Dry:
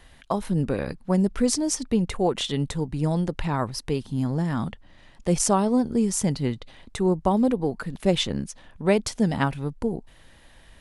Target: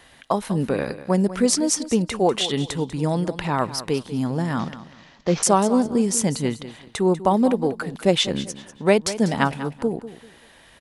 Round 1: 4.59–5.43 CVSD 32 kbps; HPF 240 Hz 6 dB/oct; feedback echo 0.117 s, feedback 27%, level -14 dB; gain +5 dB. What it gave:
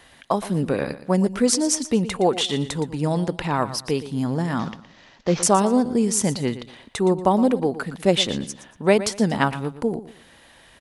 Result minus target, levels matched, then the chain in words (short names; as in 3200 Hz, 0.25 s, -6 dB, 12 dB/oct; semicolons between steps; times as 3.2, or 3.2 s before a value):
echo 77 ms early
4.59–5.43 CVSD 32 kbps; HPF 240 Hz 6 dB/oct; feedback echo 0.194 s, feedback 27%, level -14 dB; gain +5 dB